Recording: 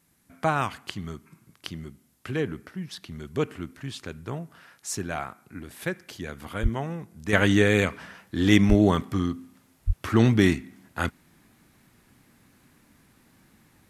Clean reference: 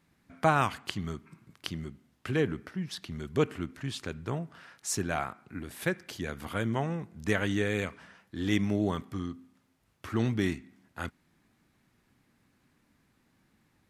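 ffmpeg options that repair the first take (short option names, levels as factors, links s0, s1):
-filter_complex "[0:a]asplit=3[s0][s1][s2];[s0]afade=t=out:st=6.62:d=0.02[s3];[s1]highpass=f=140:w=0.5412,highpass=f=140:w=1.3066,afade=t=in:st=6.62:d=0.02,afade=t=out:st=6.74:d=0.02[s4];[s2]afade=t=in:st=6.74:d=0.02[s5];[s3][s4][s5]amix=inputs=3:normalize=0,asplit=3[s6][s7][s8];[s6]afade=t=out:st=8.68:d=0.02[s9];[s7]highpass=f=140:w=0.5412,highpass=f=140:w=1.3066,afade=t=in:st=8.68:d=0.02,afade=t=out:st=8.8:d=0.02[s10];[s8]afade=t=in:st=8.8:d=0.02[s11];[s9][s10][s11]amix=inputs=3:normalize=0,asplit=3[s12][s13][s14];[s12]afade=t=out:st=9.86:d=0.02[s15];[s13]highpass=f=140:w=0.5412,highpass=f=140:w=1.3066,afade=t=in:st=9.86:d=0.02,afade=t=out:st=9.98:d=0.02[s16];[s14]afade=t=in:st=9.98:d=0.02[s17];[s15][s16][s17]amix=inputs=3:normalize=0,agate=range=0.0891:threshold=0.00224,asetnsamples=n=441:p=0,asendcmd='7.33 volume volume -9.5dB',volume=1"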